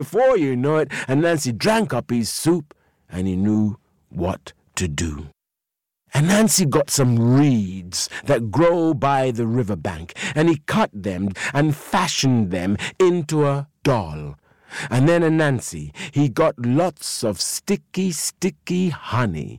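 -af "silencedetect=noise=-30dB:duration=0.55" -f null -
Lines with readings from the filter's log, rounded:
silence_start: 5.26
silence_end: 6.13 | silence_duration: 0.88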